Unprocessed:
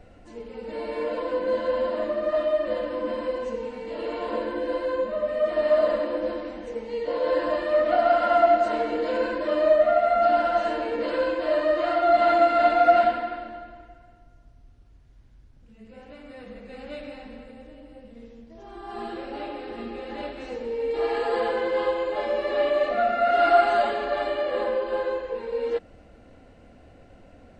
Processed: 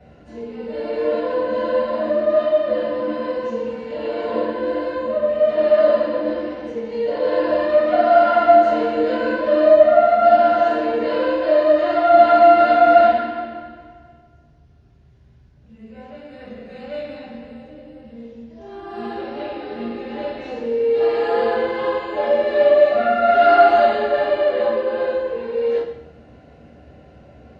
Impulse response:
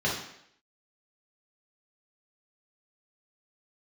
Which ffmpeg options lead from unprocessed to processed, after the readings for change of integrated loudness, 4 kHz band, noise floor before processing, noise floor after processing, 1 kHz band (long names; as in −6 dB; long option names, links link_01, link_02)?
+7.0 dB, +3.5 dB, −52 dBFS, −49 dBFS, +6.5 dB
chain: -filter_complex "[1:a]atrim=start_sample=2205[link_01];[0:a][link_01]afir=irnorm=-1:irlink=0,volume=-6.5dB"